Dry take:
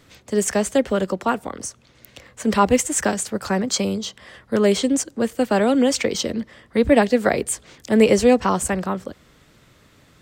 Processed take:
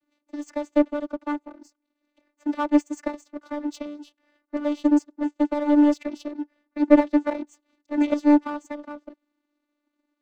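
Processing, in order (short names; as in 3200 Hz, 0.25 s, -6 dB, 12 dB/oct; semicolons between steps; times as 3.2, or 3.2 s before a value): vocoder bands 16, saw 294 Hz; power-law curve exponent 1.4; gain +1 dB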